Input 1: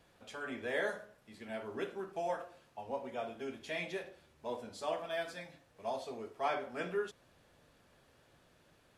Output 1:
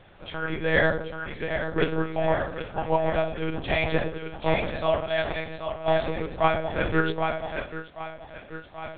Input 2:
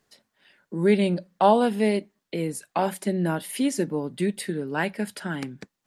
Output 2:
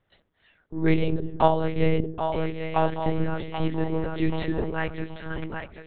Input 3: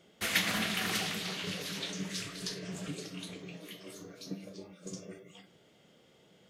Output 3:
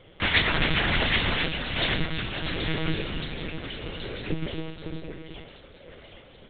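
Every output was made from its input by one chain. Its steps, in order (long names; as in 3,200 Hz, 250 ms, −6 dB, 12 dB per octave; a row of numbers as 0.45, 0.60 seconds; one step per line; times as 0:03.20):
echo with a time of its own for lows and highs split 440 Hz, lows 107 ms, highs 780 ms, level −6 dB
sample-and-hold tremolo 3.4 Hz
one-pitch LPC vocoder at 8 kHz 160 Hz
loudness normalisation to −27 LKFS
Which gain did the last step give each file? +16.5, +2.0, +13.0 decibels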